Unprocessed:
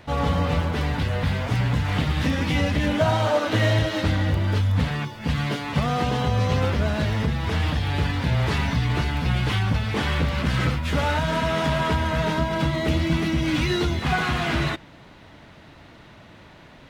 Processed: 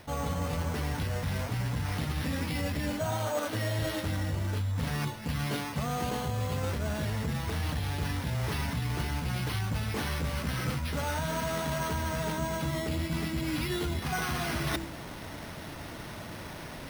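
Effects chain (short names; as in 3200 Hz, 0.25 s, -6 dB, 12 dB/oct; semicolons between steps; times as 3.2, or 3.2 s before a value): de-hum 65.82 Hz, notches 5; reverse; compressor 6:1, threshold -36 dBFS, peak gain reduction 18.5 dB; reverse; careless resampling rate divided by 6×, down none, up hold; gain +6 dB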